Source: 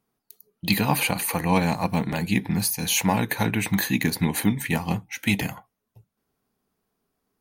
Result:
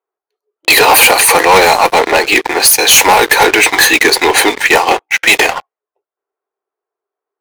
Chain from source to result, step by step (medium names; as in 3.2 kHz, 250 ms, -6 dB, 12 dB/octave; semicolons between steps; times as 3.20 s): elliptic high-pass 370 Hz, stop band 50 dB; level-controlled noise filter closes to 1.6 kHz, open at -22 dBFS; waveshaping leveller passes 5; trim +7.5 dB